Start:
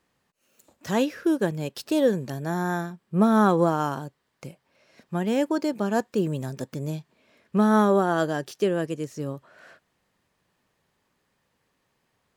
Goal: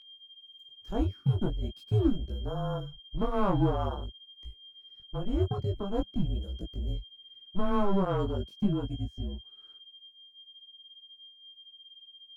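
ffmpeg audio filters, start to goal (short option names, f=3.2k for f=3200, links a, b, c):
-filter_complex "[0:a]afwtdn=0.0355,equalizer=f=190:w=0.39:g=3.5,acrossover=split=190[a][b];[a]alimiter=level_in=2dB:limit=-24dB:level=0:latency=1,volume=-2dB[c];[c][b]amix=inputs=2:normalize=0,aeval=exprs='val(0)+0.00708*sin(2*PI*3400*n/s)':c=same,asplit=2[d][e];[e]volume=15.5dB,asoftclip=hard,volume=-15.5dB,volume=-9.5dB[f];[d][f]amix=inputs=2:normalize=0,afreqshift=-200,flanger=delay=18:depth=4.1:speed=0.44,volume=-6dB"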